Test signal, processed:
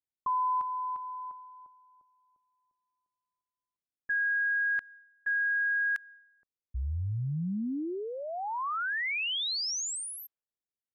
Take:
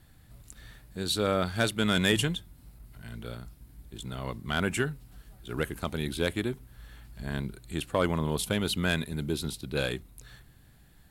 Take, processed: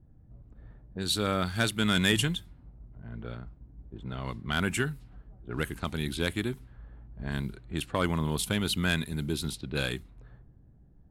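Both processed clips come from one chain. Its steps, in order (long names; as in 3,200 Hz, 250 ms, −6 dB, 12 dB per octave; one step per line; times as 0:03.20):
low-pass that shuts in the quiet parts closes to 400 Hz, open at −28.5 dBFS
dynamic equaliser 540 Hz, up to −6 dB, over −43 dBFS, Q 1.3
level +1 dB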